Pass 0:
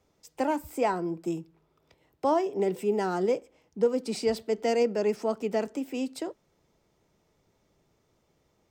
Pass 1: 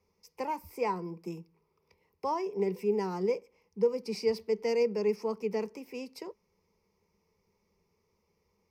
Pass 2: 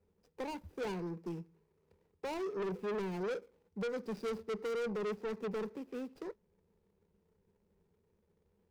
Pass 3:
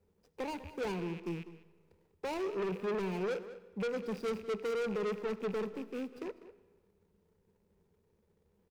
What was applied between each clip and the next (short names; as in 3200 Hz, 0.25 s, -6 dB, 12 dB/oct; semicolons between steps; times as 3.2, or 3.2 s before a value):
ripple EQ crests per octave 0.84, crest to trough 13 dB; gain -7.5 dB
median filter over 41 samples; soft clip -36 dBFS, distortion -5 dB; gain +2 dB
rattling part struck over -56 dBFS, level -43 dBFS; outdoor echo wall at 34 m, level -15 dB; digital reverb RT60 1.4 s, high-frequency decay 0.85×, pre-delay 45 ms, DRR 17.5 dB; gain +2 dB